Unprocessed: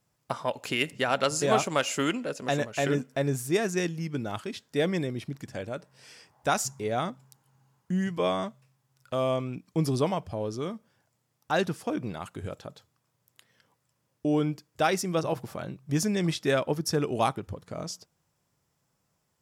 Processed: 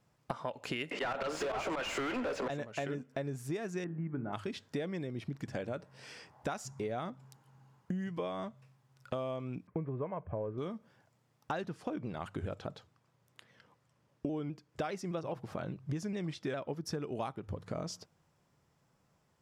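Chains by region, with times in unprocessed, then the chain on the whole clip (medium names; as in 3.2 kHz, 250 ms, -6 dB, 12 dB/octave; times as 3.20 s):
0.91–2.50 s: high-pass 280 Hz 24 dB/octave + slow attack 225 ms + overdrive pedal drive 37 dB, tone 2.2 kHz, clips at -14.5 dBFS
3.84–4.33 s: low-pass 1.7 kHz 24 dB/octave + peaking EQ 500 Hz -10 dB 0.25 oct + de-hum 48.47 Hz, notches 38
9.67–10.58 s: steep low-pass 2.2 kHz + comb 1.9 ms, depth 35%
11.64–16.78 s: treble shelf 12 kHz -8 dB + vibrato with a chosen wave saw down 4.9 Hz, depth 100 cents
whole clip: low-pass 2.9 kHz 6 dB/octave; hum notches 50/100 Hz; compression 12:1, threshold -38 dBFS; trim +4 dB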